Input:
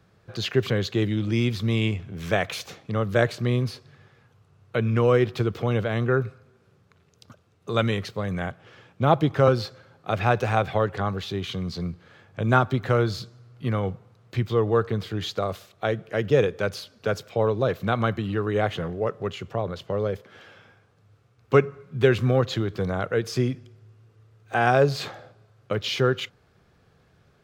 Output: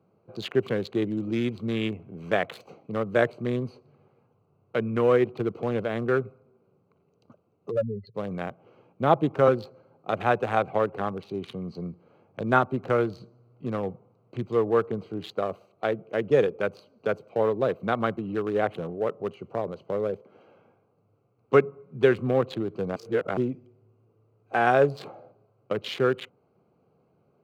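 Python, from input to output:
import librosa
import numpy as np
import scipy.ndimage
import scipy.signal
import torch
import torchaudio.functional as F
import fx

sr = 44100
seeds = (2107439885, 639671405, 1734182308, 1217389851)

y = fx.spec_expand(x, sr, power=3.8, at=(7.7, 8.14), fade=0.02)
y = fx.edit(y, sr, fx.reverse_span(start_s=22.96, length_s=0.41), tone=tone)
y = fx.wiener(y, sr, points=25)
y = scipy.signal.sosfilt(scipy.signal.butter(2, 200.0, 'highpass', fs=sr, output='sos'), y)
y = fx.dynamic_eq(y, sr, hz=5200.0, q=1.1, threshold_db=-50.0, ratio=4.0, max_db=-7)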